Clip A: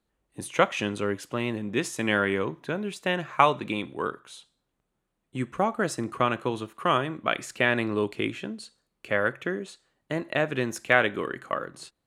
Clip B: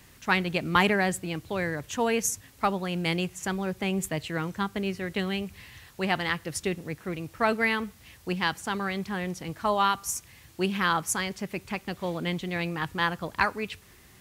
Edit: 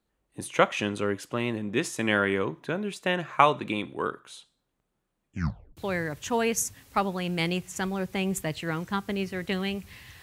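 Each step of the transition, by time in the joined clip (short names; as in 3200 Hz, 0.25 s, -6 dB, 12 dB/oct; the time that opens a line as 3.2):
clip A
5.25 tape stop 0.52 s
5.77 switch to clip B from 1.44 s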